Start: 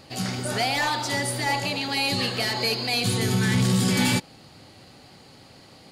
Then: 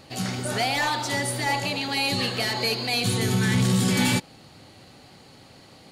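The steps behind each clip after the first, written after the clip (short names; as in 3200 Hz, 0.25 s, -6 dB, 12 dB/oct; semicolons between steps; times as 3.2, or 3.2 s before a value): notch 4900 Hz, Q 14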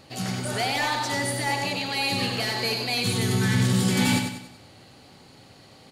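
feedback echo 96 ms, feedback 42%, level -6 dB; gain -2 dB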